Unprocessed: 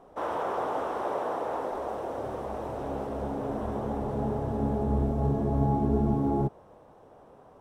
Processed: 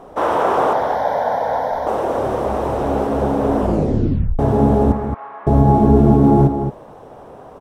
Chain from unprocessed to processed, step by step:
0:00.73–0:01.87: phaser with its sweep stopped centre 1,800 Hz, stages 8
0:04.92–0:05.47: Chebyshev band-pass filter 1,100–2,200 Hz, order 2
slap from a distant wall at 38 metres, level −8 dB
0:03.58: tape stop 0.81 s
boost into a limiter +15 dB
level −1 dB

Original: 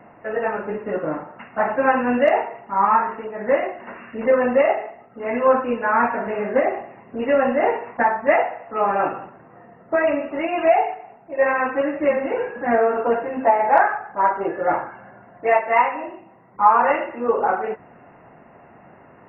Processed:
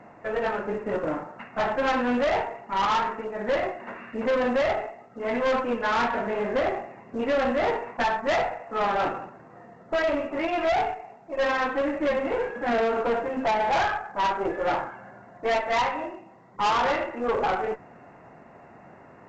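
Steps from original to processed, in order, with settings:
tube saturation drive 20 dB, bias 0.45
mu-law 128 kbit/s 16,000 Hz

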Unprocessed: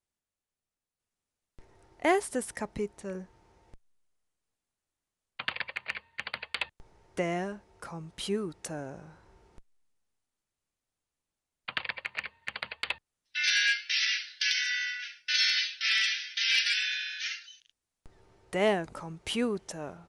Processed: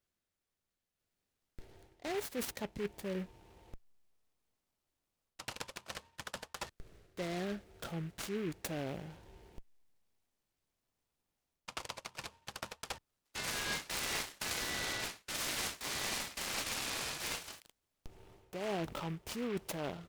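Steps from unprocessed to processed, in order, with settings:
reversed playback
downward compressor 16 to 1, threshold −37 dBFS, peak gain reduction 17.5 dB
reversed playback
auto-filter notch saw up 0.15 Hz 850–2,300 Hz
short delay modulated by noise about 1,800 Hz, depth 0.086 ms
level +3 dB

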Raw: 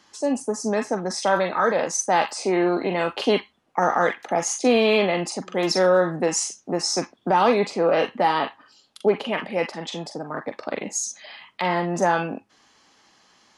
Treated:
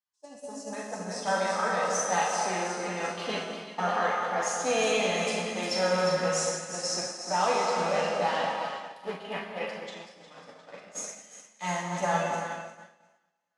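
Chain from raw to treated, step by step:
parametric band 330 Hz −11.5 dB 0.93 octaves
dense smooth reverb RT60 2.5 s, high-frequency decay 0.9×, DRR −1.5 dB
flanger 0.71 Hz, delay 8.9 ms, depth 2.1 ms, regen −19%
on a send: echo with a time of its own for lows and highs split 1,200 Hz, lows 212 ms, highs 356 ms, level −6 dB
on the sum: downward expander −23 dBFS
0:07.13–0:07.78: high-pass filter 230 Hz 12 dB per octave
level −5 dB

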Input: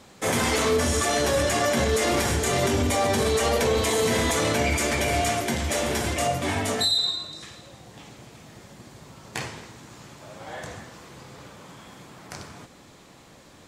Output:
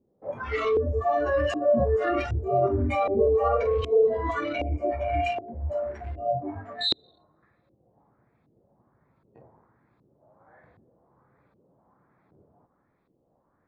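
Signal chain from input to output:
adaptive Wiener filter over 15 samples
noise reduction from a noise print of the clip's start 20 dB
auto-filter low-pass saw up 1.3 Hz 340–3,300 Hz

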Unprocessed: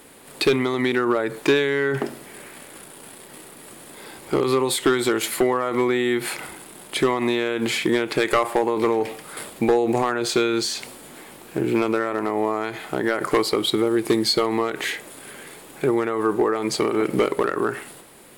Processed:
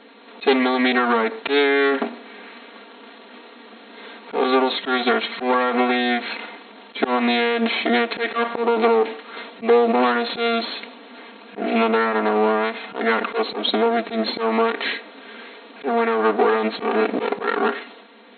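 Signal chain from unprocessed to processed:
lower of the sound and its delayed copy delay 4.3 ms
brick-wall band-pass 200–4,300 Hz
volume swells 103 ms
level +4.5 dB

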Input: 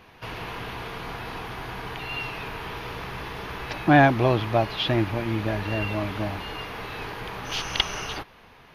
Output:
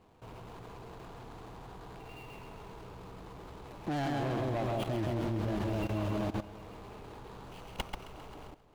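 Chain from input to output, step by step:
running median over 25 samples
on a send: echo with a time of its own for lows and highs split 730 Hz, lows 173 ms, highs 133 ms, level −3.5 dB
on the sum: hard clipping −16.5 dBFS, distortion −13 dB
output level in coarse steps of 15 dB
level −2.5 dB

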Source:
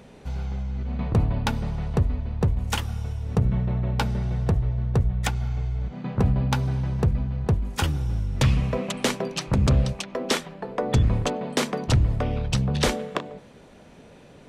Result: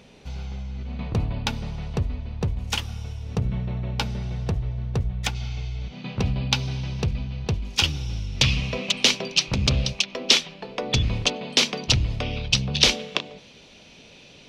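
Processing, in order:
flat-topped bell 3,800 Hz +8 dB, from 0:05.34 +15.5 dB
level −3.5 dB

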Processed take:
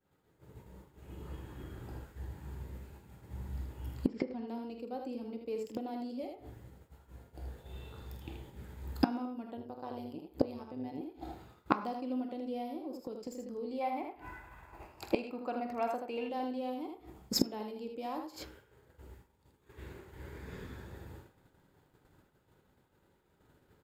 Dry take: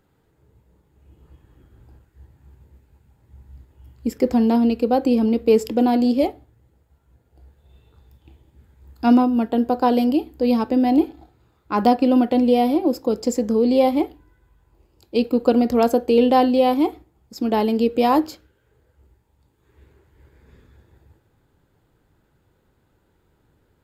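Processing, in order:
stylus tracing distortion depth 0.026 ms
0:04.07–0:04.48: low-pass filter 4,600 Hz 24 dB per octave
ambience of single reflections 47 ms −10 dB, 79 ms −5.5 dB
downward expander −52 dBFS
low-shelf EQ 100 Hz −8 dB
in parallel at 0 dB: downward compressor 16 to 1, threshold −28 dBFS, peak gain reduction 19.5 dB
0:09.57–0:11.01: on the sum: amplitude modulation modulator 140 Hz, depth 55%
0:13.81–0:16.30: gain on a spectral selection 590–2,800 Hz +10 dB
gate with flip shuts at −15 dBFS, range −26 dB
on a send at −10 dB: convolution reverb RT60 0.65 s, pre-delay 3 ms
on the sum: level +1.5 dB

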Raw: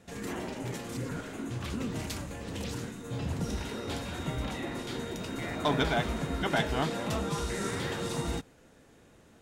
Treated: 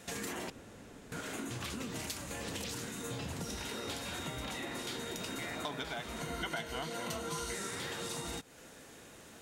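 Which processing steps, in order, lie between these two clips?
spectral tilt +2 dB per octave
downward compressor 10 to 1, threshold −43 dBFS, peak gain reduction 19.5 dB
0:00.50–0:01.12: fill with room tone
0:06.20–0:07.54: EQ curve with evenly spaced ripples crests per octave 1.9, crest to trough 8 dB
level +6 dB

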